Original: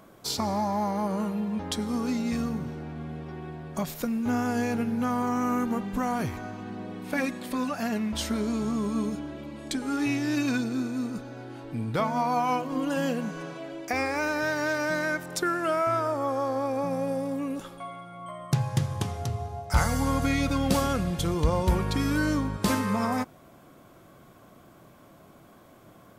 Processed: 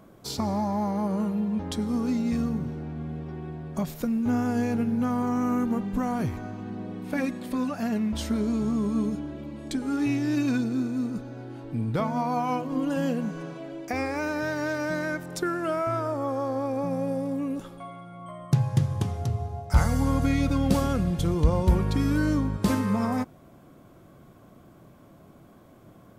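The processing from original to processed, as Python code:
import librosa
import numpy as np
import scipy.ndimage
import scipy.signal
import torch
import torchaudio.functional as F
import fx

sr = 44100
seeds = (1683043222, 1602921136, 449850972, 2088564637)

y = fx.low_shelf(x, sr, hz=500.0, db=8.5)
y = y * librosa.db_to_amplitude(-4.5)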